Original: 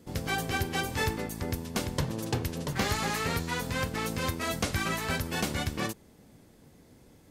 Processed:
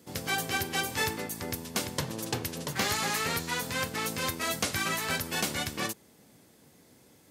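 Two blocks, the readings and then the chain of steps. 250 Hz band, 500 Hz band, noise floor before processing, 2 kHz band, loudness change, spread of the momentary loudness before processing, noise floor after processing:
−3.5 dB, −1.5 dB, −58 dBFS, +1.5 dB, +0.5 dB, 4 LU, −60 dBFS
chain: high-pass filter 87 Hz
spectral tilt +1.5 dB per octave

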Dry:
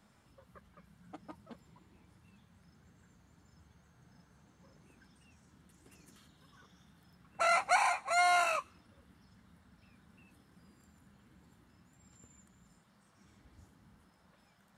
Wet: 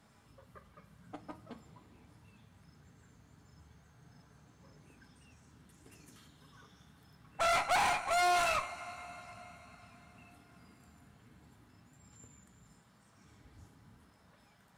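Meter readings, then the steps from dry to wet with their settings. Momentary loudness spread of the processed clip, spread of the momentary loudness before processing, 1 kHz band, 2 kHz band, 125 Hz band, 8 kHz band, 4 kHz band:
22 LU, 6 LU, −0.5 dB, −1.5 dB, +5.0 dB, +0.5 dB, +2.5 dB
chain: coupled-rooms reverb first 0.32 s, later 4.5 s, from −18 dB, DRR 6.5 dB
tube saturation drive 30 dB, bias 0.6
level +4.5 dB

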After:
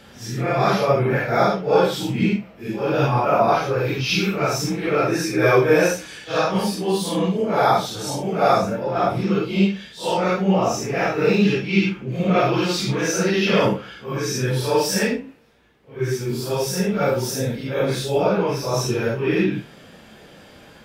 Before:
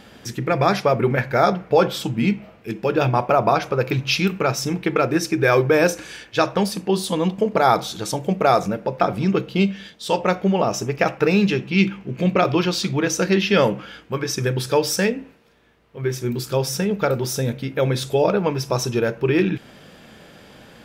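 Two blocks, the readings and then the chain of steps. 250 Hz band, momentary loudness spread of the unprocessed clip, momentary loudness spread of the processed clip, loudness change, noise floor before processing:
0.0 dB, 8 LU, 7 LU, 0.0 dB, −47 dBFS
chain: random phases in long frames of 200 ms

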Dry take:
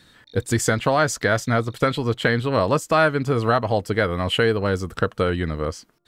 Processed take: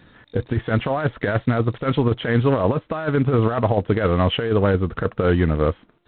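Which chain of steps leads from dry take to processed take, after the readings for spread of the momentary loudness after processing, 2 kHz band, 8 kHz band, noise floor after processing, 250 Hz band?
5 LU, −5.0 dB, below −40 dB, −57 dBFS, +3.5 dB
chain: compressor whose output falls as the input rises −21 dBFS, ratio −0.5
low-pass filter 1,300 Hz 6 dB per octave
level +4.5 dB
G.726 24 kbit/s 8,000 Hz

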